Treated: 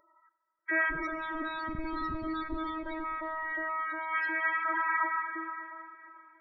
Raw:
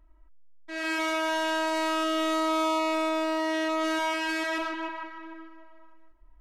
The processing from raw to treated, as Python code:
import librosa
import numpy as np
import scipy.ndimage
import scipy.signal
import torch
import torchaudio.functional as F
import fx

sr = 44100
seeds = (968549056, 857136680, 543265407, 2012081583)

y = fx.high_shelf(x, sr, hz=2200.0, db=-5.5)
y = y + 0.43 * np.pad(y, (int(5.3 * sr / 1000.0), 0))[:len(y)]
y = fx.over_compress(y, sr, threshold_db=-36.0, ratio=-1.0)
y = fx.filter_lfo_highpass(y, sr, shape='saw_up', hz=2.8, low_hz=490.0, high_hz=1600.0, q=1.5)
y = fx.schmitt(y, sr, flips_db=-37.0, at=(0.9, 3.04))
y = fx.spec_topn(y, sr, count=16)
y = fx.fixed_phaser(y, sr, hz=2900.0, stages=6)
y = y + 10.0 ** (-20.5 / 20.0) * np.pad(y, (int(591 * sr / 1000.0), 0))[:len(y)]
y = fx.rev_plate(y, sr, seeds[0], rt60_s=4.1, hf_ratio=0.9, predelay_ms=0, drr_db=12.5)
y = y * 10.0 ** (7.5 / 20.0)